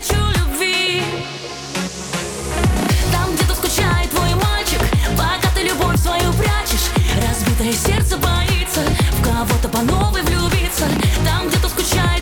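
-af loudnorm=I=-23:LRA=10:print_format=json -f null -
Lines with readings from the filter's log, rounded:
"input_i" : "-17.1",
"input_tp" : "-6.8",
"input_lra" : "2.1",
"input_thresh" : "-27.1",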